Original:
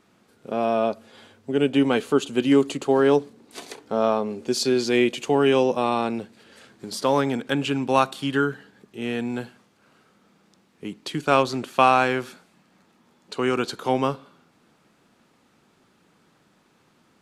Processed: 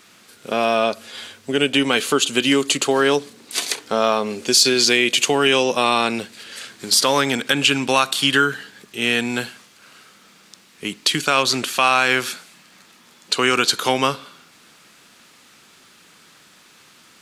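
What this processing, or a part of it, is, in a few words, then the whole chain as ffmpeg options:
mastering chain: -af "equalizer=frequency=840:width_type=o:width=0.4:gain=-3,acompressor=threshold=-22dB:ratio=2,tiltshelf=frequency=1200:gain=-8.5,asoftclip=type=hard:threshold=-8.5dB,alimiter=level_in=13.5dB:limit=-1dB:release=50:level=0:latency=1,volume=-2.5dB"

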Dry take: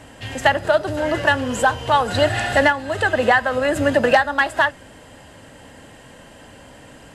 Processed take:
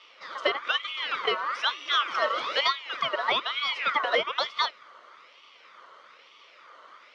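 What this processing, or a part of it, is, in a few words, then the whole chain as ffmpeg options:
voice changer toy: -af "aeval=exprs='val(0)*sin(2*PI*2000*n/s+2000*0.4/1.1*sin(2*PI*1.1*n/s))':channel_layout=same,highpass=510,equalizer=frequency=530:width_type=q:width=4:gain=6,equalizer=frequency=780:width_type=q:width=4:gain=-9,equalizer=frequency=1200:width_type=q:width=4:gain=9,equalizer=frequency=1700:width_type=q:width=4:gain=-9,equalizer=frequency=2600:width_type=q:width=4:gain=-6,equalizer=frequency=4300:width_type=q:width=4:gain=-5,lowpass=frequency=4700:width=0.5412,lowpass=frequency=4700:width=1.3066,volume=-4dB"

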